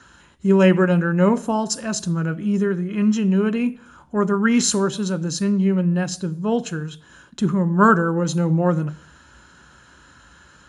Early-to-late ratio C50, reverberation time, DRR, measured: 20.0 dB, 0.55 s, 11.0 dB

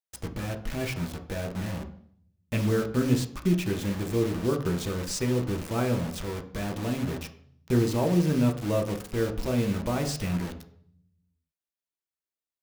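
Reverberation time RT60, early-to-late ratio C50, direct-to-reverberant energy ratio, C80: 0.60 s, 11.5 dB, 3.5 dB, 15.0 dB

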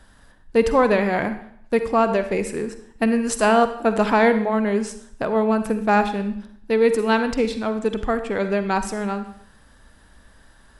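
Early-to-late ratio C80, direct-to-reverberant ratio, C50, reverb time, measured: 13.5 dB, 9.5 dB, 10.5 dB, 0.65 s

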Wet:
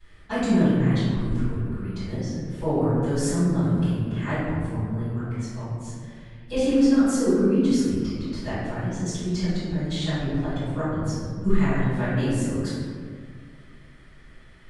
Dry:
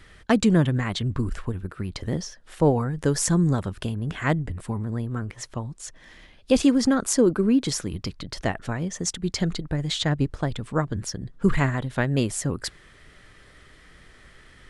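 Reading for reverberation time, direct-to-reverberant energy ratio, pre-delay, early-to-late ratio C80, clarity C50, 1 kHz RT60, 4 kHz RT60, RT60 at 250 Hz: 1.9 s, −18.0 dB, 3 ms, 0.0 dB, −3.5 dB, 1.6 s, 0.95 s, 2.9 s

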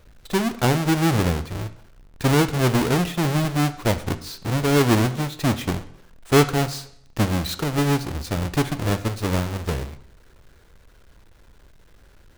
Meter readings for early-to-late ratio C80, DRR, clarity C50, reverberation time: 17.5 dB, 11.5 dB, 14.5 dB, 0.70 s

